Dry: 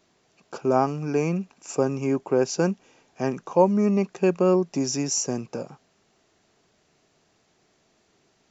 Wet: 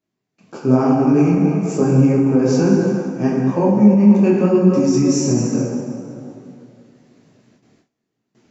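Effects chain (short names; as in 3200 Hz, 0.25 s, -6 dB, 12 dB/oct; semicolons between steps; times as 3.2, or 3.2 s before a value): plate-style reverb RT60 2.8 s, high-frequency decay 0.6×, DRR -2 dB; gate with hold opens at -50 dBFS; graphic EQ 125/250/2000 Hz +9/+11/+3 dB; limiter -4.5 dBFS, peak gain reduction 8 dB; detuned doubles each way 38 cents; gain +2.5 dB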